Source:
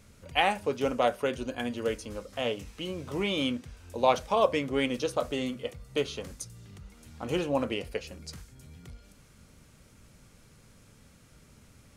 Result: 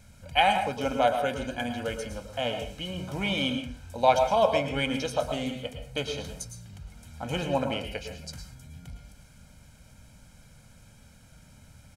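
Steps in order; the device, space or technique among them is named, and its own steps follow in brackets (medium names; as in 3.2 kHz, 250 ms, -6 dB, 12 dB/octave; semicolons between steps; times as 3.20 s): microphone above a desk (comb 1.3 ms, depth 69%; reverberation RT60 0.45 s, pre-delay 102 ms, DRR 6 dB)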